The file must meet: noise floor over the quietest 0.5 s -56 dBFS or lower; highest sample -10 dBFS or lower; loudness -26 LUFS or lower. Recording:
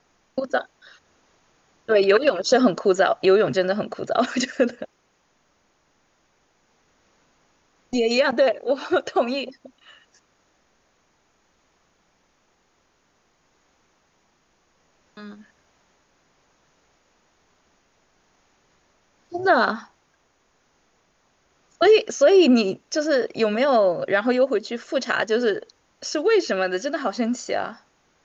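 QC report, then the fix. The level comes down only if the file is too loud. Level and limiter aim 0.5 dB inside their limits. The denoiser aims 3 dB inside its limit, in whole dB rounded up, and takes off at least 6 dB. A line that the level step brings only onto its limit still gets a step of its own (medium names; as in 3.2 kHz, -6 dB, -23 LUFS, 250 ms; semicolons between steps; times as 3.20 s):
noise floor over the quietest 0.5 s -66 dBFS: pass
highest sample -6.0 dBFS: fail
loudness -21.0 LUFS: fail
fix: trim -5.5 dB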